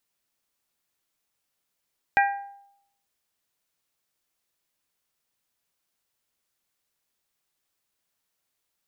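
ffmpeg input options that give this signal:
-f lavfi -i "aevalsrc='0.158*pow(10,-3*t/0.75)*sin(2*PI*800*t)+0.112*pow(10,-3*t/0.462)*sin(2*PI*1600*t)+0.0794*pow(10,-3*t/0.406)*sin(2*PI*1920*t)+0.0562*pow(10,-3*t/0.348)*sin(2*PI*2400*t)':d=0.89:s=44100"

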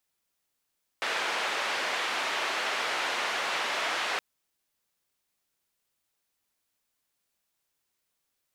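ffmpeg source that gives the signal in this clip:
-f lavfi -i "anoisesrc=c=white:d=3.17:r=44100:seed=1,highpass=f=520,lowpass=f=2500,volume=-15.6dB"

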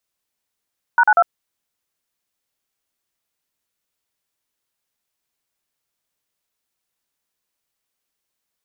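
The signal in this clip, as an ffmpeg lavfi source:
-f lavfi -i "aevalsrc='0.251*clip(min(mod(t,0.095),0.054-mod(t,0.095))/0.002,0,1)*(eq(floor(t/0.095),0)*(sin(2*PI*941*mod(t,0.095))+sin(2*PI*1477*mod(t,0.095)))+eq(floor(t/0.095),1)*(sin(2*PI*852*mod(t,0.095))+sin(2*PI*1477*mod(t,0.095)))+eq(floor(t/0.095),2)*(sin(2*PI*697*mod(t,0.095))+sin(2*PI*1336*mod(t,0.095))))':d=0.285:s=44100"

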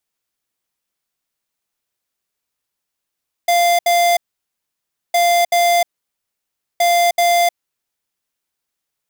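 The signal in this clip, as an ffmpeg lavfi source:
-f lavfi -i "aevalsrc='0.211*(2*lt(mod(694*t,1),0.5)-1)*clip(min(mod(mod(t,1.66),0.38),0.31-mod(mod(t,1.66),0.38))/0.005,0,1)*lt(mod(t,1.66),0.76)':d=4.98:s=44100"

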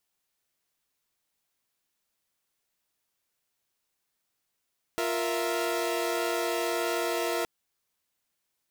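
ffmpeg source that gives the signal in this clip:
-f lavfi -i "aevalsrc='0.0355*((2*mod(349.23*t,1)-1)+(2*mod(466.16*t,1)-1)+(2*mod(659.26*t,1)-1))':d=2.47:s=44100"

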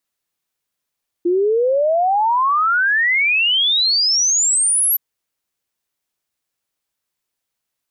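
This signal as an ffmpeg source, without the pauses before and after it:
-f lavfi -i "aevalsrc='0.224*clip(min(t,3.72-t)/0.01,0,1)*sin(2*PI*340*3.72/log(12000/340)*(exp(log(12000/340)*t/3.72)-1))':d=3.72:s=44100"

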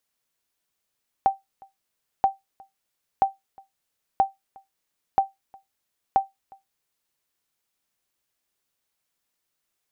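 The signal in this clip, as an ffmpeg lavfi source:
-f lavfi -i "aevalsrc='0.316*(sin(2*PI*780*mod(t,0.98))*exp(-6.91*mod(t,0.98)/0.17)+0.0398*sin(2*PI*780*max(mod(t,0.98)-0.36,0))*exp(-6.91*max(mod(t,0.98)-0.36,0)/0.17))':d=5.88:s=44100"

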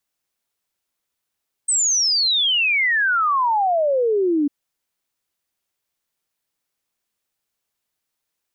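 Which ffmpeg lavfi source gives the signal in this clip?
-f lavfi -i "aevalsrc='0.168*clip(min(t,2.8-t)/0.01,0,1)*sin(2*PI*8400*2.8/log(280/8400)*(exp(log(280/8400)*t/2.8)-1))':d=2.8:s=44100"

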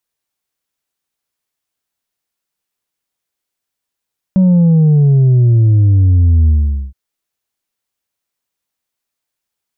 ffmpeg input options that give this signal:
-f lavfi -i "aevalsrc='0.473*clip((2.57-t)/0.45,0,1)*tanh(1.41*sin(2*PI*190*2.57/log(65/190)*(exp(log(65/190)*t/2.57)-1)))/tanh(1.41)':d=2.57:s=44100"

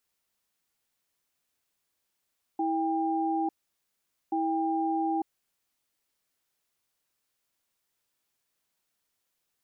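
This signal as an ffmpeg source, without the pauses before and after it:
-f lavfi -i "aevalsrc='0.0398*(sin(2*PI*325*t)+sin(2*PI*798*t))*clip(min(mod(t,1.73),0.9-mod(t,1.73))/0.005,0,1)':d=3.36:s=44100"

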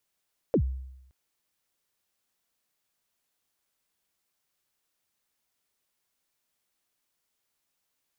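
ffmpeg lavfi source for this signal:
-f lavfi -i "aevalsrc='0.133*pow(10,-3*t/0.86)*sin(2*PI*(570*0.079/log(65/570)*(exp(log(65/570)*min(t,0.079)/0.079)-1)+65*max(t-0.079,0)))':d=0.57:s=44100"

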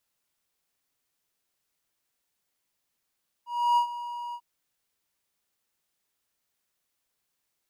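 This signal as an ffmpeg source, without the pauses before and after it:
-f lavfi -i "aevalsrc='0.158*(1-4*abs(mod(958*t+0.25,1)-0.5))':d=0.943:s=44100,afade=t=in:d=0.309,afade=t=out:st=0.309:d=0.095:silence=0.178,afade=t=out:st=0.88:d=0.063"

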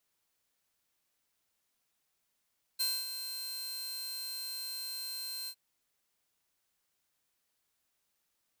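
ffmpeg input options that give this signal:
-f lavfi -i "aevalsrc='0.0501*(2*mod(4150*t,1)-1)':d=2.756:s=44100,afade=t=in:d=0.018,afade=t=out:st=0.018:d=0.239:silence=0.335,afade=t=out:st=2.69:d=0.066"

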